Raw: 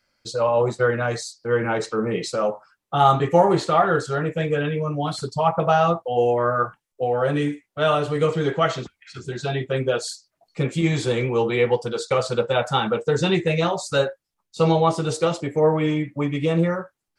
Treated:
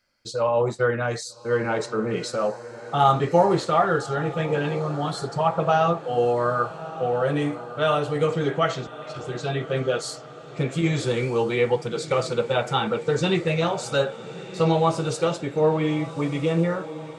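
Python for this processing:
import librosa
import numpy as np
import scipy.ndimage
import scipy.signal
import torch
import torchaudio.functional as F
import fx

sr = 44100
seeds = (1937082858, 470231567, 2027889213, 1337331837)

y = fx.echo_diffused(x, sr, ms=1228, feedback_pct=50, wet_db=-14.5)
y = y * 10.0 ** (-2.0 / 20.0)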